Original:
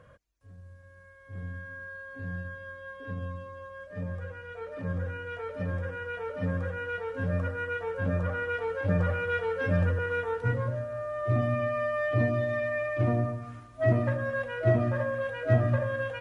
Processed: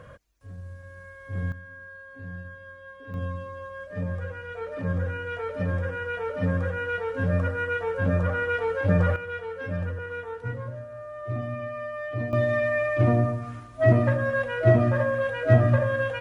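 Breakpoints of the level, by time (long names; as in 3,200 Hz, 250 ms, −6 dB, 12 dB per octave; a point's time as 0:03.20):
+9 dB
from 0:01.52 −2 dB
from 0:03.14 +5 dB
from 0:09.16 −4.5 dB
from 0:12.33 +5.5 dB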